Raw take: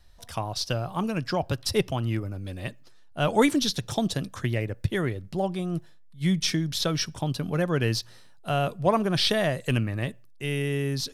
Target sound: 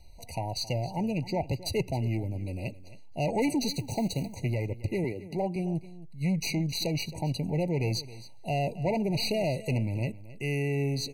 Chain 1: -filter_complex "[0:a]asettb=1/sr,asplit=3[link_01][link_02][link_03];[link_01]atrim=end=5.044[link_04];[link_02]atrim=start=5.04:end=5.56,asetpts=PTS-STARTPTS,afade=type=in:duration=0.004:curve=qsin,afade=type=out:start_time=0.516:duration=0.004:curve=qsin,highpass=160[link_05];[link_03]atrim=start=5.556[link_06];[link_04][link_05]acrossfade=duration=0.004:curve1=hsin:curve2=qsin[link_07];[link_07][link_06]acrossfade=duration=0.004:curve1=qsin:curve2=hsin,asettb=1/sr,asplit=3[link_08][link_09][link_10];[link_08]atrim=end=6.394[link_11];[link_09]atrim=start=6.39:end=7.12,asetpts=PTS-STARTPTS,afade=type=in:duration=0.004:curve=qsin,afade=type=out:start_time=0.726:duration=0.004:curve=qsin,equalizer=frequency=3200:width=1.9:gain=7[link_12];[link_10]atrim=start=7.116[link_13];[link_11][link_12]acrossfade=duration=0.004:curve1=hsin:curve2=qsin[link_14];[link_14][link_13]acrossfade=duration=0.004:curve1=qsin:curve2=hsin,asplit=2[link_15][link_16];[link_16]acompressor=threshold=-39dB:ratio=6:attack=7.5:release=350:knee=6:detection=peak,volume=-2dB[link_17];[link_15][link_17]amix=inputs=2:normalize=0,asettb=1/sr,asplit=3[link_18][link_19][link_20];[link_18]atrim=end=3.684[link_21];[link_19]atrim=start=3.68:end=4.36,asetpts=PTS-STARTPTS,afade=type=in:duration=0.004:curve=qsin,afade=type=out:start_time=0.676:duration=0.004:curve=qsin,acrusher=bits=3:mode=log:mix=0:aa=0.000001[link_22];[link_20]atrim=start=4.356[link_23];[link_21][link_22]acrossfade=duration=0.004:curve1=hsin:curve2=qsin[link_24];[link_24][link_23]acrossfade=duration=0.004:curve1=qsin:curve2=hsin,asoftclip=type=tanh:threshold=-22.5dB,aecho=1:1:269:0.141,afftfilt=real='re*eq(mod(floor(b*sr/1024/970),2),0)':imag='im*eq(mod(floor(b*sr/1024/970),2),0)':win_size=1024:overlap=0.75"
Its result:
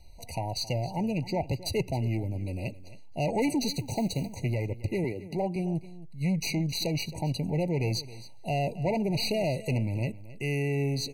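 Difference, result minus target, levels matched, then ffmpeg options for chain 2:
downward compressor: peak gain reduction −7.5 dB
-filter_complex "[0:a]asettb=1/sr,asplit=3[link_01][link_02][link_03];[link_01]atrim=end=5.044[link_04];[link_02]atrim=start=5.04:end=5.56,asetpts=PTS-STARTPTS,afade=type=in:duration=0.004:curve=qsin,afade=type=out:start_time=0.516:duration=0.004:curve=qsin,highpass=160[link_05];[link_03]atrim=start=5.556[link_06];[link_04][link_05]acrossfade=duration=0.004:curve1=hsin:curve2=qsin[link_07];[link_07][link_06]acrossfade=duration=0.004:curve1=qsin:curve2=hsin,asettb=1/sr,asplit=3[link_08][link_09][link_10];[link_08]atrim=end=6.394[link_11];[link_09]atrim=start=6.39:end=7.12,asetpts=PTS-STARTPTS,afade=type=in:duration=0.004:curve=qsin,afade=type=out:start_time=0.726:duration=0.004:curve=qsin,equalizer=frequency=3200:width=1.9:gain=7[link_12];[link_10]atrim=start=7.116[link_13];[link_11][link_12]acrossfade=duration=0.004:curve1=hsin:curve2=qsin[link_14];[link_14][link_13]acrossfade=duration=0.004:curve1=qsin:curve2=hsin,asplit=2[link_15][link_16];[link_16]acompressor=threshold=-48dB:ratio=6:attack=7.5:release=350:knee=6:detection=peak,volume=-2dB[link_17];[link_15][link_17]amix=inputs=2:normalize=0,asettb=1/sr,asplit=3[link_18][link_19][link_20];[link_18]atrim=end=3.684[link_21];[link_19]atrim=start=3.68:end=4.36,asetpts=PTS-STARTPTS,afade=type=in:duration=0.004:curve=qsin,afade=type=out:start_time=0.676:duration=0.004:curve=qsin,acrusher=bits=3:mode=log:mix=0:aa=0.000001[link_22];[link_20]atrim=start=4.356[link_23];[link_21][link_22]acrossfade=duration=0.004:curve1=hsin:curve2=qsin[link_24];[link_24][link_23]acrossfade=duration=0.004:curve1=qsin:curve2=hsin,asoftclip=type=tanh:threshold=-22.5dB,aecho=1:1:269:0.141,afftfilt=real='re*eq(mod(floor(b*sr/1024/970),2),0)':imag='im*eq(mod(floor(b*sr/1024/970),2),0)':win_size=1024:overlap=0.75"

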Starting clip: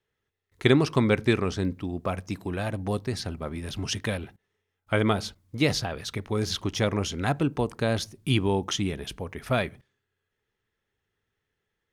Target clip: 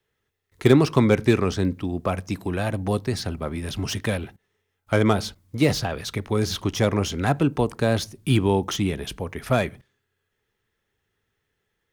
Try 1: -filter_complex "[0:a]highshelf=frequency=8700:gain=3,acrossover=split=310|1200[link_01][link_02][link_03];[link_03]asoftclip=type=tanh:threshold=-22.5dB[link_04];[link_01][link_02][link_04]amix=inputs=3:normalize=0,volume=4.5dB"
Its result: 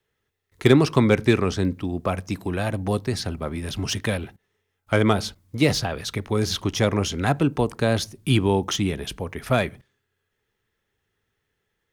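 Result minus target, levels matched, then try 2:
soft clipping: distortion −5 dB
-filter_complex "[0:a]highshelf=frequency=8700:gain=3,acrossover=split=310|1200[link_01][link_02][link_03];[link_03]asoftclip=type=tanh:threshold=-29dB[link_04];[link_01][link_02][link_04]amix=inputs=3:normalize=0,volume=4.5dB"

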